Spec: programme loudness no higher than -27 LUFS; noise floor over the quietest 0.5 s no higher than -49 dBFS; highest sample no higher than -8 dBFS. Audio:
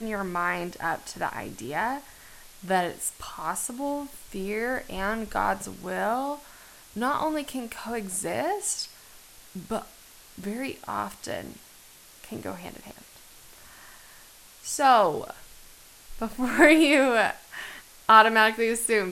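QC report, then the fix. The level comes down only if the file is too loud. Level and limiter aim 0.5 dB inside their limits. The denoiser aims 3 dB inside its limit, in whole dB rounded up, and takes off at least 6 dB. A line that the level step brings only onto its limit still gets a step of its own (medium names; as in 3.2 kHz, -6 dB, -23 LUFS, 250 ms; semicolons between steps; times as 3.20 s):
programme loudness -25.5 LUFS: fail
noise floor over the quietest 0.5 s -51 dBFS: pass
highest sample -3.5 dBFS: fail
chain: trim -2 dB; peak limiter -8.5 dBFS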